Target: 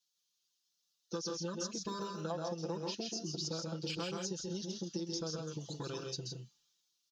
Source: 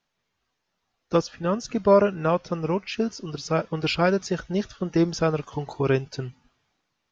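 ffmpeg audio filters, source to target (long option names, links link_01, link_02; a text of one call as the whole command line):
ffmpeg -i in.wav -filter_complex "[0:a]afwtdn=0.0447,acrossover=split=1900|3800[link_01][link_02][link_03];[link_01]acompressor=threshold=-31dB:ratio=4[link_04];[link_02]acompressor=threshold=-53dB:ratio=4[link_05];[link_03]acompressor=threshold=-58dB:ratio=4[link_06];[link_04][link_05][link_06]amix=inputs=3:normalize=0,aecho=1:1:5.9:0.94,aecho=1:1:131.2|163.3:0.562|0.447,aexciter=amount=9.6:drive=6.3:freq=3200,asetnsamples=nb_out_samples=441:pad=0,asendcmd='2.3 equalizer g 4;3.45 equalizer g -9.5',equalizer=frequency=710:width=2.7:gain=-9.5,acompressor=threshold=-27dB:ratio=6,highpass=frequency=230:poles=1,volume=-6dB" out.wav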